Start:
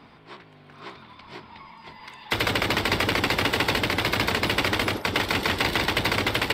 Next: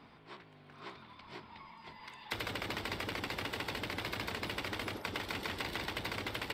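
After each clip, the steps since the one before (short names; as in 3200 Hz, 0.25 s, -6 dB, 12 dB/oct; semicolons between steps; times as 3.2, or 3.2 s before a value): compressor, threshold -28 dBFS, peak gain reduction 9.5 dB; gain -7.5 dB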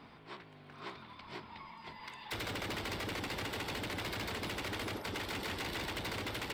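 hard clip -37.5 dBFS, distortion -9 dB; gain +2.5 dB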